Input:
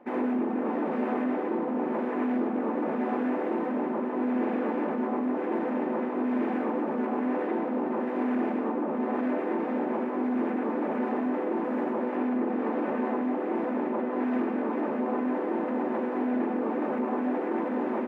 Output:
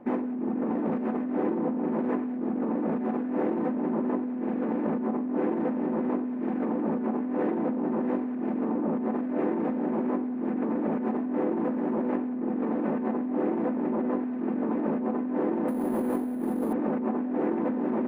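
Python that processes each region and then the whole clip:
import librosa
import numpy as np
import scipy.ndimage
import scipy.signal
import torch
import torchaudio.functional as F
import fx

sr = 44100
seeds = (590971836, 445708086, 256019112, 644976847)

y = fx.chain(x, sr, fx.cvsd(bps=32000),
    fx.lowpass(hz=3000.0, slope=12),
    fx.resample_bad(factor=4, down='filtered', up='hold'), at=(15.68, 16.73))
y = fx.bass_treble(y, sr, bass_db=13, treble_db=6)
y = fx.over_compress(y, sr, threshold_db=-27.0, ratio=-1.0)
y = fx.high_shelf(y, sr, hz=2600.0, db=-10.0)
y = F.gain(torch.from_numpy(y), -1.0).numpy()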